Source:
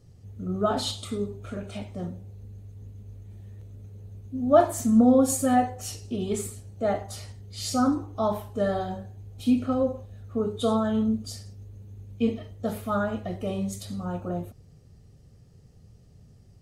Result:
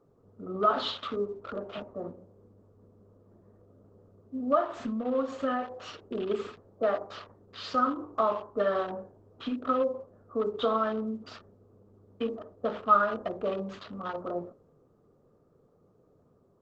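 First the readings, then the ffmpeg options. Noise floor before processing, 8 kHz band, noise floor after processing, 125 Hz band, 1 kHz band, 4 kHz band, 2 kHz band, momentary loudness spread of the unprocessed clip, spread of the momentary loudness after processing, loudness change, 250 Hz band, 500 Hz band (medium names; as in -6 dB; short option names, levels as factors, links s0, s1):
-54 dBFS, under -25 dB, -65 dBFS, -14.5 dB, 0.0 dB, -3.0 dB, +1.0 dB, 23 LU, 15 LU, -4.5 dB, -10.5 dB, -3.0 dB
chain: -filter_complex "[0:a]acrossover=split=1100[s0][s1];[s1]acrusher=bits=6:mix=0:aa=0.000001[s2];[s0][s2]amix=inputs=2:normalize=0,acompressor=threshold=0.0562:ratio=16,highpass=430,equalizer=f=790:t=q:w=4:g=-10,equalizer=f=1200:t=q:w=4:g=9,equalizer=f=2200:t=q:w=4:g=-9,lowpass=f=3100:w=0.5412,lowpass=f=3100:w=1.3066,bandreject=f=60:t=h:w=6,bandreject=f=120:t=h:w=6,bandreject=f=180:t=h:w=6,bandreject=f=240:t=h:w=6,bandreject=f=300:t=h:w=6,bandreject=f=360:t=h:w=6,bandreject=f=420:t=h:w=6,bandreject=f=480:t=h:w=6,bandreject=f=540:t=h:w=6,bandreject=f=600:t=h:w=6,volume=2.24" -ar 48000 -c:a libopus -b:a 12k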